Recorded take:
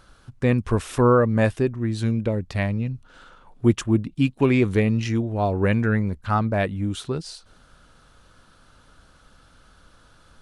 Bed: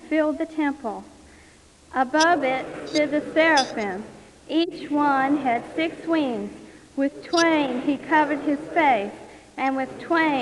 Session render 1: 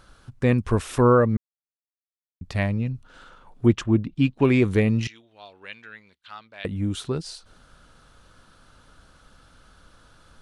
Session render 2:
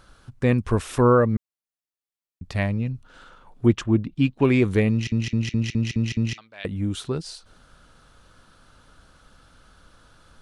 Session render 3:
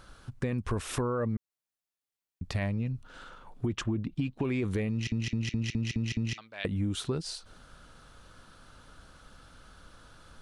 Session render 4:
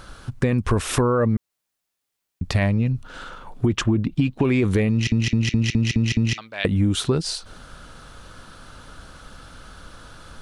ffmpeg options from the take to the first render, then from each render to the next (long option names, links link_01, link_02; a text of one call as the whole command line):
ffmpeg -i in.wav -filter_complex "[0:a]asettb=1/sr,asplit=3[link_01][link_02][link_03];[link_01]atrim=end=3.664[link_04];[link_02]atrim=start=3.66:end=4.45,asetpts=PTS-STARTPTS,afade=type=in:duration=0.004:curve=qsin,afade=type=out:start_time=0.786:duration=0.004:curve=qsin,lowpass=5100[link_05];[link_03]atrim=start=4.446[link_06];[link_04][link_05]acrossfade=duration=0.004:curve1=hsin:curve2=qsin[link_07];[link_07][link_06]acrossfade=duration=0.004:curve1=qsin:curve2=hsin,asettb=1/sr,asplit=3[link_08][link_09][link_10];[link_08]atrim=end=5.074[link_11];[link_09]atrim=start=5.07:end=6.65,asetpts=PTS-STARTPTS,afade=type=in:duration=0.004:curve=qsin,afade=type=out:start_time=1.576:duration=0.004:curve=qsin,bandpass=frequency=3400:width_type=q:width=2.7[link_12];[link_10]atrim=start=6.646[link_13];[link_11][link_12]acrossfade=duration=0.004:curve1=hsin:curve2=qsin[link_14];[link_14][link_13]acrossfade=duration=0.004:curve1=qsin:curve2=hsin,asplit=3[link_15][link_16][link_17];[link_15]atrim=end=1.37,asetpts=PTS-STARTPTS,afade=type=out:start_time=1.366:duration=0.004:curve=hsin[link_18];[link_16]atrim=start=1.37:end=2.41,asetpts=PTS-STARTPTS,volume=0[link_19];[link_17]atrim=start=2.41,asetpts=PTS-STARTPTS,afade=type=in:duration=0.004:curve=hsin[link_20];[link_18][link_19][link_20]concat=n=3:v=0:a=1" out.wav
ffmpeg -i in.wav -filter_complex "[0:a]asplit=8[link_01][link_02][link_03][link_04][link_05][link_06][link_07][link_08];[link_01]atrim=end=5.122[link_09];[link_02]atrim=start=4.908:end=5.122[link_10];[link_03]atrim=start=4.908:end=5.122[link_11];[link_04]atrim=start=4.908:end=5.122[link_12];[link_05]atrim=start=4.908:end=5.122[link_13];[link_06]atrim=start=4.908:end=5.122[link_14];[link_07]atrim=start=4.908:end=5.122[link_15];[link_08]atrim=start=6.378[link_16];[link_09][link_10]acrossfade=duration=0.004:curve1=hsin:curve2=hsin[link_17];[link_17][link_11]acrossfade=duration=0.004:curve1=hsin:curve2=hsin[link_18];[link_18][link_12]acrossfade=duration=0.004:curve1=hsin:curve2=hsin[link_19];[link_19][link_13]acrossfade=duration=0.004:curve1=hsin:curve2=hsin[link_20];[link_20][link_14]acrossfade=duration=0.004:curve1=hsin:curve2=hsin[link_21];[link_21][link_15]acrossfade=duration=0.004:curve1=hsin:curve2=hsin[link_22];[link_22][link_16]acrossfade=duration=0.004:curve1=hsin:curve2=hsin" out.wav
ffmpeg -i in.wav -af "alimiter=limit=-16dB:level=0:latency=1:release=30,acompressor=threshold=-27dB:ratio=6" out.wav
ffmpeg -i in.wav -af "volume=11dB" out.wav